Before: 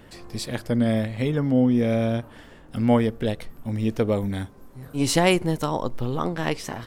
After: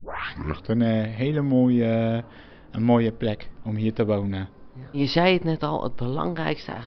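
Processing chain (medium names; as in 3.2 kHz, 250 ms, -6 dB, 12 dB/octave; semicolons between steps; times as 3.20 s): tape start-up on the opening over 0.77 s; resampled via 11.025 kHz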